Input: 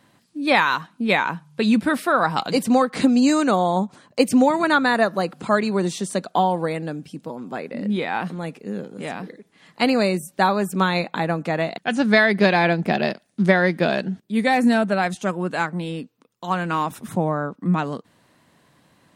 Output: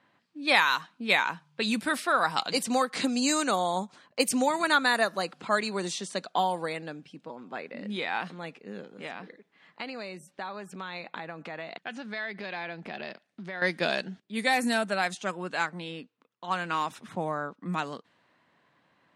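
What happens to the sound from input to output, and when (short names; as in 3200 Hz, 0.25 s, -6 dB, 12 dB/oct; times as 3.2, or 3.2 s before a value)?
9.06–13.62 compressor, threshold -26 dBFS
whole clip: low-pass opened by the level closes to 2100 Hz, open at -14 dBFS; tilt +3 dB/oct; gain -6 dB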